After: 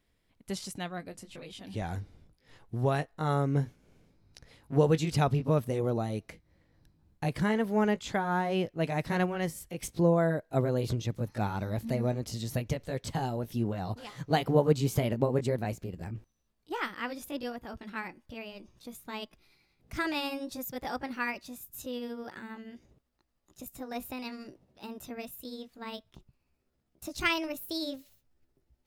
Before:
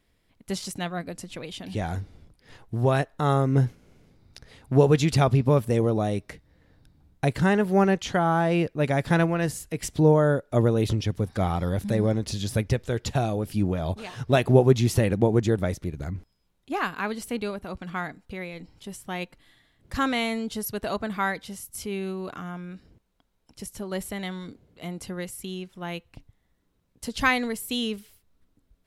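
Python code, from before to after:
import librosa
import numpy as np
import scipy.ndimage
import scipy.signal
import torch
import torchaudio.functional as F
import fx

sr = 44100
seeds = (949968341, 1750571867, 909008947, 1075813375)

y = fx.pitch_glide(x, sr, semitones=5.0, runs='starting unshifted')
y = y * librosa.db_to_amplitude(-5.5)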